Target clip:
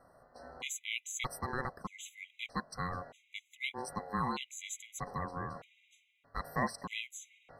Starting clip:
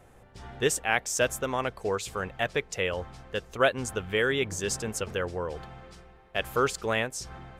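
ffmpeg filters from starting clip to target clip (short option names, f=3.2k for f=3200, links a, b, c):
-af "aeval=exprs='val(0)*sin(2*PI*630*n/s)':c=same,afftfilt=real='re*gt(sin(2*PI*0.8*pts/sr)*(1-2*mod(floor(b*sr/1024/2000),2)),0)':imag='im*gt(sin(2*PI*0.8*pts/sr)*(1-2*mod(floor(b*sr/1024/2000),2)),0)':win_size=1024:overlap=0.75,volume=-4.5dB"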